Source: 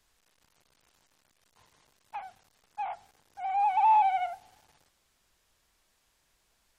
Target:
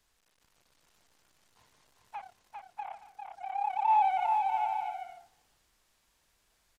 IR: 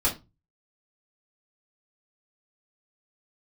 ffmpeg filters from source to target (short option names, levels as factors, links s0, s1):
-filter_complex "[0:a]asplit=3[s0][s1][s2];[s0]afade=t=out:st=2.2:d=0.02[s3];[s1]tremolo=f=34:d=0.857,afade=t=in:st=2.2:d=0.02,afade=t=out:st=3.88:d=0.02[s4];[s2]afade=t=in:st=3.88:d=0.02[s5];[s3][s4][s5]amix=inputs=3:normalize=0,aecho=1:1:400|640|784|870.4|922.2:0.631|0.398|0.251|0.158|0.1,volume=0.75"